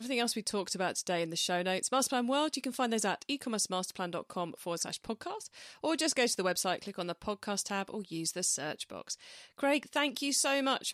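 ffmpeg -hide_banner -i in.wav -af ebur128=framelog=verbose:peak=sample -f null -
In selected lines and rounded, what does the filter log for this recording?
Integrated loudness:
  I:         -33.0 LUFS
  Threshold: -43.1 LUFS
Loudness range:
  LRA:         3.4 LU
  Threshold: -53.6 LUFS
  LRA low:   -35.5 LUFS
  LRA high:  -32.1 LUFS
Sample peak:
  Peak:      -17.1 dBFS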